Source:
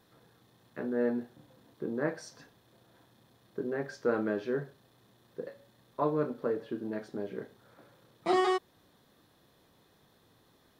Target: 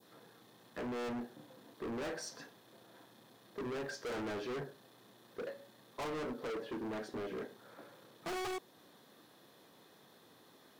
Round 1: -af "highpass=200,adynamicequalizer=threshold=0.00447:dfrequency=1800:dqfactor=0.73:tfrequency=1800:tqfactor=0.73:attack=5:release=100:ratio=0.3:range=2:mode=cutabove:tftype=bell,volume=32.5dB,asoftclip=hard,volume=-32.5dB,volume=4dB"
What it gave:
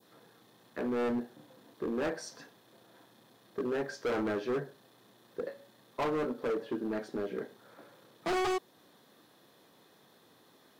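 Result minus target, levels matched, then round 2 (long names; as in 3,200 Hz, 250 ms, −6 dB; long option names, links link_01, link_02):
gain into a clipping stage and back: distortion −4 dB
-af "highpass=200,adynamicequalizer=threshold=0.00447:dfrequency=1800:dqfactor=0.73:tfrequency=1800:tqfactor=0.73:attack=5:release=100:ratio=0.3:range=2:mode=cutabove:tftype=bell,volume=42dB,asoftclip=hard,volume=-42dB,volume=4dB"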